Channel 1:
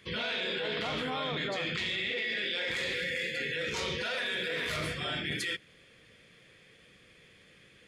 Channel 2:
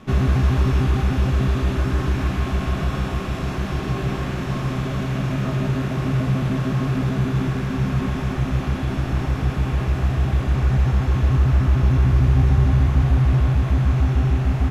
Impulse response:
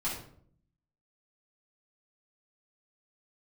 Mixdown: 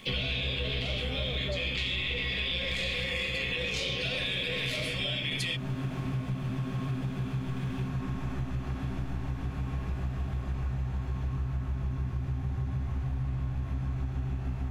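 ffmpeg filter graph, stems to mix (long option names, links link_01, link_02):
-filter_complex "[0:a]firequalizer=gain_entry='entry(340,0);entry(590,12);entry(890,-13);entry(2500,14);entry(6000,8)':delay=0.05:min_phase=1,aeval=exprs='sgn(val(0))*max(abs(val(0))-0.00119,0)':channel_layout=same,volume=0dB[link_01];[1:a]volume=-12.5dB,asplit=2[link_02][link_03];[link_03]volume=-7.5dB[link_04];[2:a]atrim=start_sample=2205[link_05];[link_04][link_05]afir=irnorm=-1:irlink=0[link_06];[link_01][link_02][link_06]amix=inputs=3:normalize=0,acompressor=threshold=-29dB:ratio=6"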